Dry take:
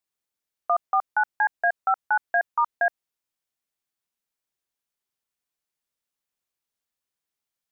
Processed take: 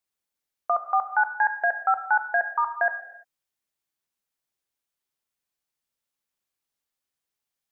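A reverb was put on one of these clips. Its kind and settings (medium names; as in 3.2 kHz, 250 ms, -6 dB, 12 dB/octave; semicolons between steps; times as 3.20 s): gated-style reverb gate 370 ms falling, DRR 8 dB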